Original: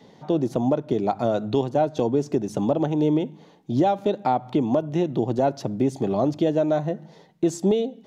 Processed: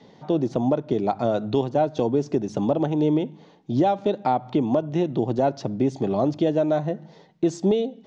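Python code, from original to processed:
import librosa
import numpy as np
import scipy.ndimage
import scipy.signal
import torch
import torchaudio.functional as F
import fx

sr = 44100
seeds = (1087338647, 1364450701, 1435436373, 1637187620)

y = scipy.signal.sosfilt(scipy.signal.butter(4, 6400.0, 'lowpass', fs=sr, output='sos'), x)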